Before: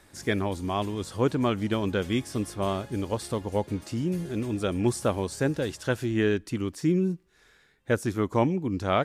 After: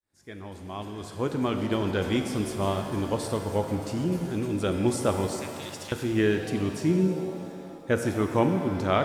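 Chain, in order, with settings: fade-in on the opening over 2.04 s; 5.27–5.92 s: elliptic high-pass 2 kHz; pitch-shifted reverb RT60 2.4 s, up +7 st, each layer -8 dB, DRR 5.5 dB

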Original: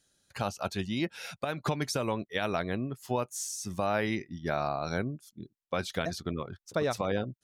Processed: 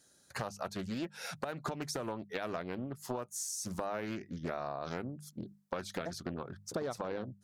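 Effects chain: high-pass 120 Hz 6 dB/octave; peaking EQ 2.9 kHz -8.5 dB 0.88 oct; hum notches 50/100/150/200 Hz; compression 4:1, threshold -44 dBFS, peak gain reduction 16 dB; loudspeaker Doppler distortion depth 0.51 ms; trim +7 dB

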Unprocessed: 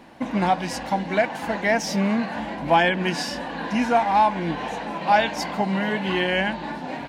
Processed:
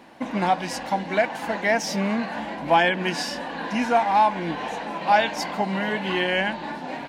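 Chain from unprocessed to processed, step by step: bass shelf 130 Hz -10.5 dB

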